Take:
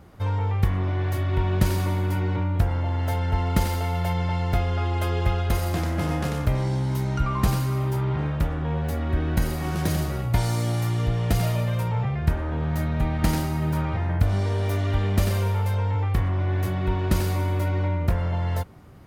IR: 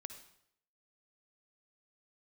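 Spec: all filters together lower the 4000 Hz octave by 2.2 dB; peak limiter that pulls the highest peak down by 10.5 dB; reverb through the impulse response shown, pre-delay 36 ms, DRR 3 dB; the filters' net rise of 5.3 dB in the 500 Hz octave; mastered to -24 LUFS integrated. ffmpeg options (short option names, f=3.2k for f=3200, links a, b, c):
-filter_complex "[0:a]equalizer=f=500:t=o:g=7,equalizer=f=4k:t=o:g=-3,alimiter=limit=-15.5dB:level=0:latency=1,asplit=2[a][b];[1:a]atrim=start_sample=2205,adelay=36[c];[b][c]afir=irnorm=-1:irlink=0,volume=1dB[d];[a][d]amix=inputs=2:normalize=0"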